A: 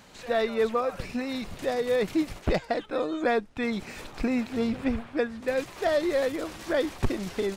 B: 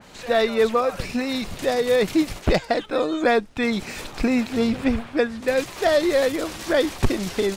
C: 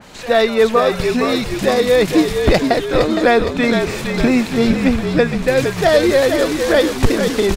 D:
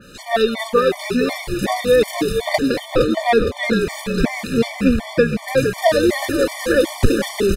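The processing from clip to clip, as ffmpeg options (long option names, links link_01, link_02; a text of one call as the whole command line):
ffmpeg -i in.wav -af "adynamicequalizer=threshold=0.00501:dfrequency=2700:dqfactor=0.7:tfrequency=2700:tqfactor=0.7:attack=5:release=100:ratio=0.375:range=2:mode=boostabove:tftype=highshelf,volume=6dB" out.wav
ffmpeg -i in.wav -filter_complex "[0:a]asplit=7[link_01][link_02][link_03][link_04][link_05][link_06][link_07];[link_02]adelay=463,afreqshift=-46,volume=-6dB[link_08];[link_03]adelay=926,afreqshift=-92,volume=-11.8dB[link_09];[link_04]adelay=1389,afreqshift=-138,volume=-17.7dB[link_10];[link_05]adelay=1852,afreqshift=-184,volume=-23.5dB[link_11];[link_06]adelay=2315,afreqshift=-230,volume=-29.4dB[link_12];[link_07]adelay=2778,afreqshift=-276,volume=-35.2dB[link_13];[link_01][link_08][link_09][link_10][link_11][link_12][link_13]amix=inputs=7:normalize=0,volume=6dB" out.wav
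ffmpeg -i in.wav -af "aexciter=amount=2.2:drive=1.8:freq=9600,afftfilt=real='re*gt(sin(2*PI*2.7*pts/sr)*(1-2*mod(floor(b*sr/1024/600),2)),0)':imag='im*gt(sin(2*PI*2.7*pts/sr)*(1-2*mod(floor(b*sr/1024/600),2)),0)':win_size=1024:overlap=0.75" out.wav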